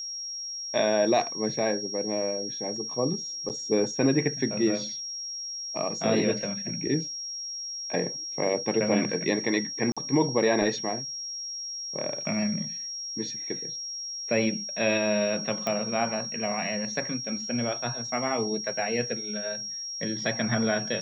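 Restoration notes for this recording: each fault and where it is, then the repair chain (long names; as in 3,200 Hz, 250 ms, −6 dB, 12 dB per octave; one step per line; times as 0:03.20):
whistle 5,600 Hz −33 dBFS
0:03.49–0:03.50: drop-out 8.4 ms
0:09.92–0:09.97: drop-out 46 ms
0:15.67: click −16 dBFS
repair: click removal
notch filter 5,600 Hz, Q 30
repair the gap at 0:03.49, 8.4 ms
repair the gap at 0:09.92, 46 ms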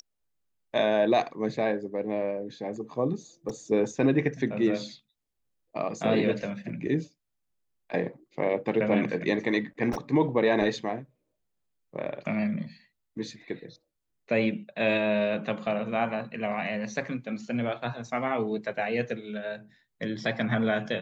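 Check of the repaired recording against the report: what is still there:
none of them is left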